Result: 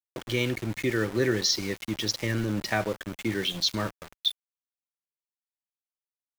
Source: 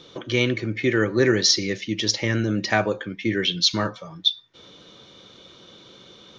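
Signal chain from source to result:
in parallel at −1 dB: downward compressor 16 to 1, threshold −29 dBFS, peak gain reduction 16.5 dB
on the sum: centre clipping without the shift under −27 dBFS
low-shelf EQ 74 Hz +6.5 dB
level −8 dB

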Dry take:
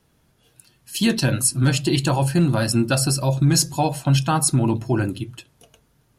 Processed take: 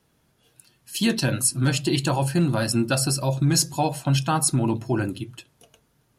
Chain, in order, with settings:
low-shelf EQ 79 Hz −7.5 dB
level −2 dB

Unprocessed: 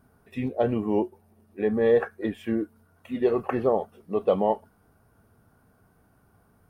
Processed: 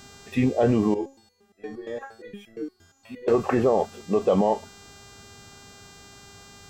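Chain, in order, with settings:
brickwall limiter −20.5 dBFS, peak gain reduction 9.5 dB
hum with harmonics 400 Hz, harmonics 20, −59 dBFS −1 dB per octave
0:00.94–0:03.28: step-sequenced resonator 8.6 Hz 84–660 Hz
level +9 dB

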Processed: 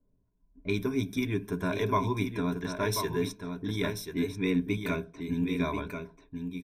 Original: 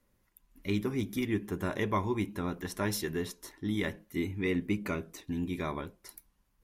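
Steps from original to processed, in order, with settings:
low-pass that shuts in the quiet parts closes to 470 Hz, open at −30.5 dBFS
EQ curve with evenly spaced ripples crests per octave 1.6, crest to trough 12 dB
single-tap delay 1,038 ms −7 dB

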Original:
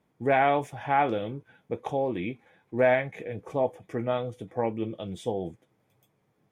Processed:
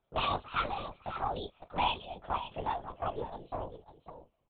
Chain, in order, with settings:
gliding playback speed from 165% → 125%
high-pass filter 500 Hz 6 dB per octave
parametric band 1,800 Hz −9.5 dB 0.57 octaves
hard clipping −18.5 dBFS, distortion −21 dB
flanger swept by the level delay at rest 11 ms, full sweep at −21.5 dBFS
double-tracking delay 28 ms −12.5 dB
on a send: single-tap delay 548 ms −11 dB
on the sum: linear-prediction vocoder at 8 kHz whisper
level −1 dB

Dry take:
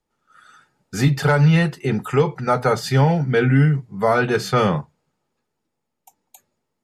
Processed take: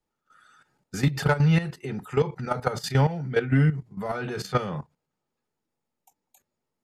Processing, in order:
in parallel at −6.5 dB: soft clipping −16 dBFS, distortion −11 dB
on the sum: output level in coarse steps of 13 dB
level −5 dB

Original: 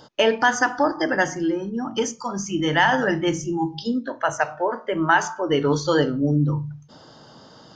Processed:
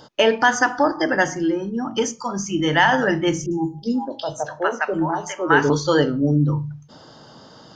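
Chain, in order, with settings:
0:03.46–0:05.70: three-band delay without the direct sound lows, highs, mids 50/410 ms, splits 770/5,200 Hz
level +2 dB

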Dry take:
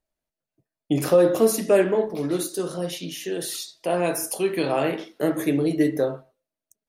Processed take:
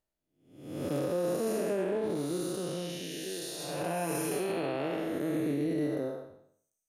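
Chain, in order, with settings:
spectrum smeared in time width 441 ms
reverb reduction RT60 0.81 s
brickwall limiter −23.5 dBFS, peak gain reduction 8 dB
0:03.58–0:04.40: comb filter 6.9 ms, depth 72%

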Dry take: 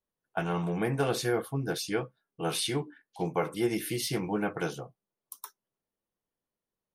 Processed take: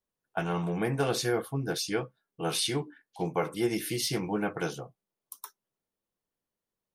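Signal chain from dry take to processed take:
dynamic equaliser 5,500 Hz, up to +4 dB, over −47 dBFS, Q 1.2

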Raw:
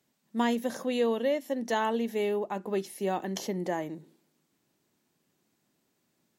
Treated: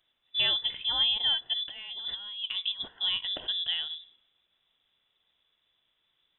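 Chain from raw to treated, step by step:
voice inversion scrambler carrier 3,700 Hz
0:01.68–0:02.88: compressor whose output falls as the input rises −35 dBFS, ratio −0.5
dynamic equaliser 2,200 Hz, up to −5 dB, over −44 dBFS, Q 2.2
level +1.5 dB

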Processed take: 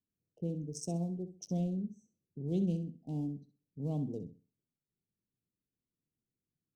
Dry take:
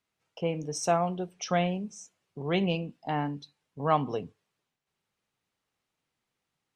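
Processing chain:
adaptive Wiener filter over 25 samples
Chebyshev band-stop filter 280–7,500 Hz, order 2
flutter between parallel walls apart 11.1 metres, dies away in 0.34 s
level −2 dB

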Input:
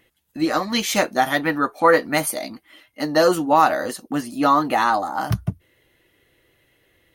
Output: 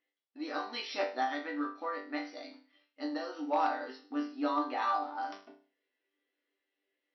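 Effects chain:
mu-law and A-law mismatch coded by A
0:01.33–0:03.39: downward compressor 6 to 1, threshold −19 dBFS, peak gain reduction 9 dB
resonators tuned to a chord G2 sus4, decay 0.4 s
hard clipping −22 dBFS, distortion −28 dB
linear-phase brick-wall band-pass 230–5,900 Hz

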